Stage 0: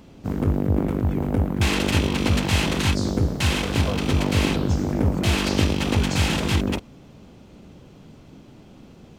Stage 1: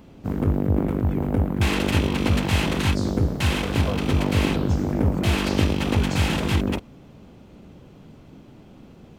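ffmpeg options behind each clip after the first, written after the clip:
ffmpeg -i in.wav -af "equalizer=frequency=6000:width_type=o:width=1.7:gain=-5" out.wav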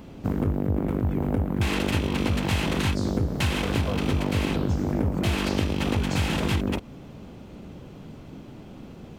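ffmpeg -i in.wav -af "acompressor=threshold=-26dB:ratio=4,volume=4dB" out.wav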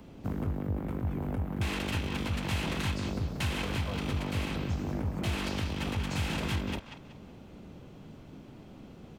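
ffmpeg -i in.wav -filter_complex "[0:a]acrossover=split=210|650|7200[link_01][link_02][link_03][link_04];[link_02]alimiter=level_in=1.5dB:limit=-24dB:level=0:latency=1:release=482,volume=-1.5dB[link_05];[link_03]aecho=1:1:187|374|561|748:0.447|0.147|0.0486|0.0161[link_06];[link_01][link_05][link_06][link_04]amix=inputs=4:normalize=0,volume=-6.5dB" out.wav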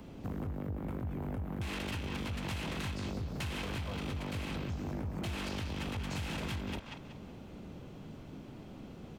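ffmpeg -i in.wav -af "acompressor=threshold=-33dB:ratio=6,asoftclip=type=tanh:threshold=-31.5dB,volume=1dB" out.wav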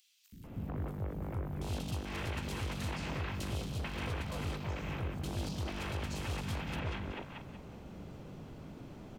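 ffmpeg -i in.wav -filter_complex "[0:a]acrossover=split=260|3200[link_01][link_02][link_03];[link_01]adelay=320[link_04];[link_02]adelay=440[link_05];[link_04][link_05][link_03]amix=inputs=3:normalize=0,volume=1dB" out.wav

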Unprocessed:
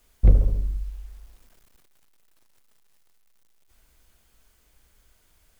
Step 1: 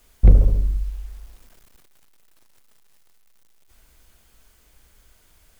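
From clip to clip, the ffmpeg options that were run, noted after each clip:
ffmpeg -i in.wav -af "acontrast=39" out.wav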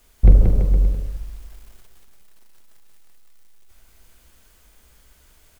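ffmpeg -i in.wav -filter_complex "[0:a]asplit=2[link_01][link_02];[link_02]adelay=46,volume=-12dB[link_03];[link_01][link_03]amix=inputs=2:normalize=0,aecho=1:1:180|333|463|573.6|667.6:0.631|0.398|0.251|0.158|0.1" out.wav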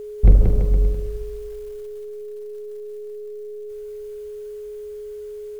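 ffmpeg -i in.wav -af "aeval=exprs='val(0)+0.0316*sin(2*PI*420*n/s)':channel_layout=same,volume=-1dB" out.wav

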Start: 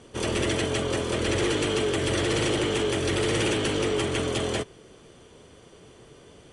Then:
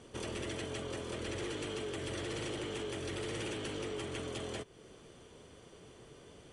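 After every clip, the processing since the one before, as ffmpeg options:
ffmpeg -i in.wav -af "acompressor=threshold=-37dB:ratio=2.5,volume=-5dB" out.wav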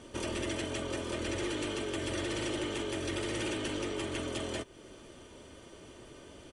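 ffmpeg -i in.wav -af "aecho=1:1:3.3:0.41,volume=4dB" out.wav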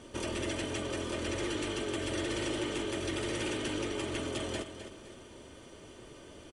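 ffmpeg -i in.wav -af "aecho=1:1:258|516|774|1032:0.316|0.12|0.0457|0.0174" out.wav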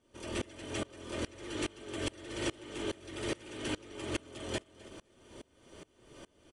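ffmpeg -i in.wav -af "aeval=exprs='val(0)*pow(10,-27*if(lt(mod(-2.4*n/s,1),2*abs(-2.4)/1000),1-mod(-2.4*n/s,1)/(2*abs(-2.4)/1000),(mod(-2.4*n/s,1)-2*abs(-2.4)/1000)/(1-2*abs(-2.4)/1000))/20)':channel_layout=same,volume=3.5dB" out.wav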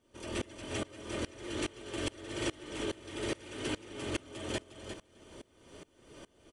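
ffmpeg -i in.wav -af "aecho=1:1:354:0.376" out.wav

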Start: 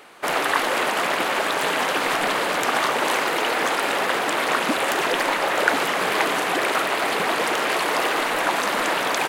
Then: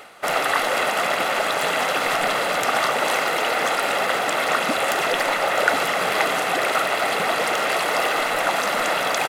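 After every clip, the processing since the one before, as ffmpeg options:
ffmpeg -i in.wav -af "aecho=1:1:1.5:0.41,areverse,acompressor=mode=upward:threshold=-26dB:ratio=2.5,areverse" out.wav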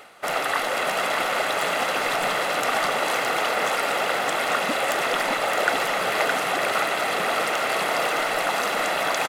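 ffmpeg -i in.wav -af "aecho=1:1:615:0.596,volume=-3.5dB" out.wav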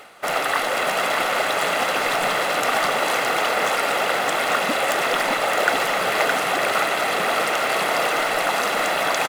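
ffmpeg -i in.wav -af "acrusher=bits=6:mode=log:mix=0:aa=0.000001,volume=2.5dB" out.wav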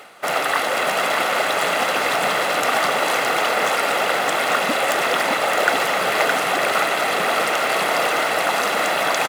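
ffmpeg -i in.wav -af "highpass=92,volume=1.5dB" out.wav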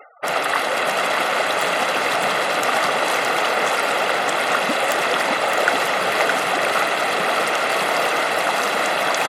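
ffmpeg -i in.wav -af "afftfilt=real='re*gte(hypot(re,im),0.0158)':imag='im*gte(hypot(re,im),0.0158)':win_size=1024:overlap=0.75" out.wav

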